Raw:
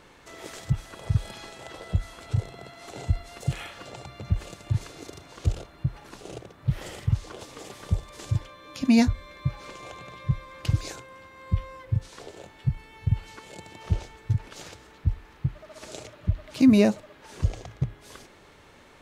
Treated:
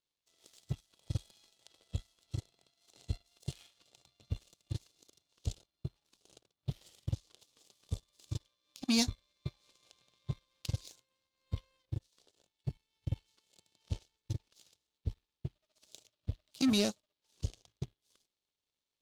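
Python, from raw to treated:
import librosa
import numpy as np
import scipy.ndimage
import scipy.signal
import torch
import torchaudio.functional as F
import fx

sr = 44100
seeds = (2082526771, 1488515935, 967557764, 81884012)

y = fx.power_curve(x, sr, exponent=2.0)
y = 10.0 ** (-20.0 / 20.0) * np.tanh(y / 10.0 ** (-20.0 / 20.0))
y = fx.high_shelf_res(y, sr, hz=2600.0, db=11.5, q=1.5)
y = F.gain(torch.from_numpy(y), -3.0).numpy()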